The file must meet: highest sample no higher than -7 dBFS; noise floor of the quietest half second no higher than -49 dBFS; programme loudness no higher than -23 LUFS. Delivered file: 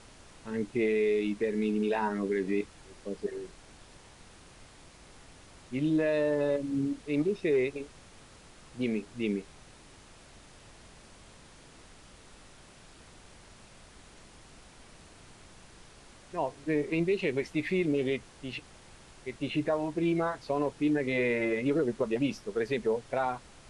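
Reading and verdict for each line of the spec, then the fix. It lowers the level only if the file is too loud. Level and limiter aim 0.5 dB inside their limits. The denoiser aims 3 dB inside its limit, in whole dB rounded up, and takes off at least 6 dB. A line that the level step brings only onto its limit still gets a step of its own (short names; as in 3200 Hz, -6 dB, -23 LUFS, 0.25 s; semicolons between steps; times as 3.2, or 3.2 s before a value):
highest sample -17.5 dBFS: OK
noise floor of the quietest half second -54 dBFS: OK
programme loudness -30.5 LUFS: OK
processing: none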